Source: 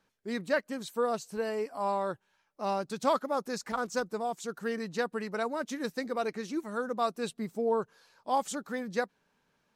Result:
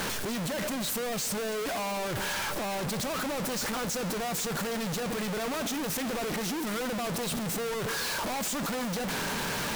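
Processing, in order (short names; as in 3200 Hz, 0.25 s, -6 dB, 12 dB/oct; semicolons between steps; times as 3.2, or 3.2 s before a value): infinite clipping; reverb RT60 3.5 s, pre-delay 0.132 s, DRR 14 dB; gain +1.5 dB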